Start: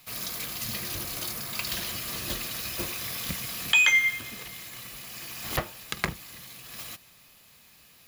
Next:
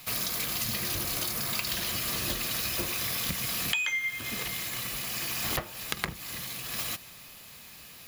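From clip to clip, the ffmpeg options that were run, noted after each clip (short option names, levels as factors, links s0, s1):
-af "acompressor=threshold=0.0178:ratio=10,volume=2.37"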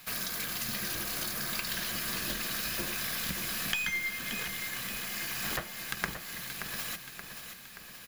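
-af "aeval=exprs='(tanh(3.98*val(0)+0.75)-tanh(0.75))/3.98':c=same,equalizer=f=100:t=o:w=0.33:g=-11,equalizer=f=200:t=o:w=0.33:g=4,equalizer=f=1600:t=o:w=0.33:g=9,aecho=1:1:577|1154|1731|2308|2885|3462:0.376|0.203|0.11|0.0592|0.032|0.0173"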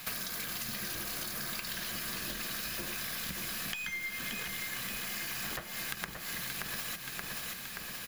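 -af "acompressor=threshold=0.00891:ratio=10,volume=2.11"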